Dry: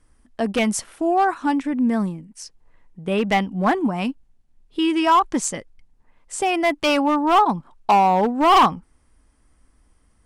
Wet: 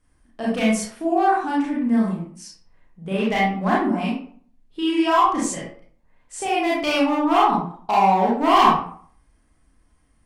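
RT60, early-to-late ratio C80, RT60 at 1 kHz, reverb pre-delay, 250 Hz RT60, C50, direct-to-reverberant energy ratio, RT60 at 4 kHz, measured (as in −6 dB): 0.50 s, 6.5 dB, 0.50 s, 28 ms, 0.55 s, 1.5 dB, −6.0 dB, 0.35 s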